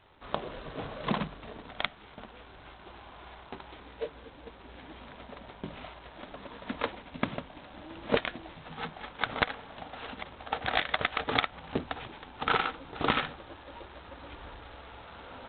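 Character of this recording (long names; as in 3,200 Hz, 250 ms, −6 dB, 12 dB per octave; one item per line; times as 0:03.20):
a buzz of ramps at a fixed pitch in blocks of 8 samples
G.726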